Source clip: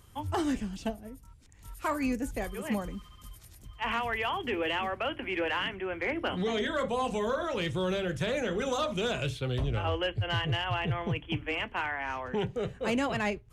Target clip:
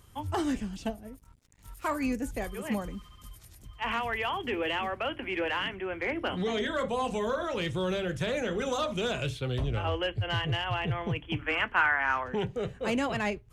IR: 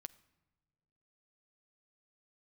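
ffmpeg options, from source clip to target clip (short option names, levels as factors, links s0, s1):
-filter_complex "[0:a]asettb=1/sr,asplit=3[s0][s1][s2];[s0]atrim=end=1.134[s3];[s1]atrim=start=1.13:end=1.86,asetpts=PTS-STARTPTS,afade=t=in:d=0.004:c=qsin,afade=t=out:st=0.726:d=0.004:c=qsin,aeval=exprs='sgn(val(0))*max(abs(val(0))-0.00126,0)':c=same[s4];[s2]atrim=start=1.856[s5];[s3][s4]acrossfade=d=0.004:c1=hsin:c2=qsin[s6];[s6][s5]acrossfade=d=0.004:c1=qsin:c2=hsin,asettb=1/sr,asplit=3[s7][s8][s9];[s7]atrim=end=11.394[s10];[s8]atrim=start=11.39:end=12.24,asetpts=PTS-STARTPTS,afade=t=in:d=0.004:c=qsin,afade=t=out:st=0.846:d=0.004:c=qsin,equalizer=f=1400:w=1.5:g=12[s11];[s9]atrim=start=12.236[s12];[s10][s11]acrossfade=d=0.004:c1=hsin:c2=qsin[s13];[s13][s12]acrossfade=d=0.004:c1=qsin:c2=hsin"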